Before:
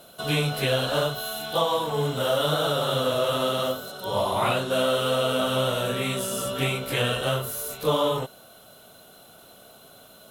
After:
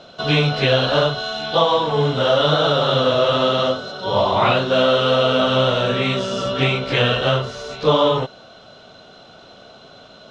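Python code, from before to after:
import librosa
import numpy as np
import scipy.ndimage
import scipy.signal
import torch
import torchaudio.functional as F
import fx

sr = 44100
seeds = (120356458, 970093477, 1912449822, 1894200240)

y = scipy.signal.sosfilt(scipy.signal.butter(6, 5700.0, 'lowpass', fs=sr, output='sos'), x)
y = F.gain(torch.from_numpy(y), 7.5).numpy()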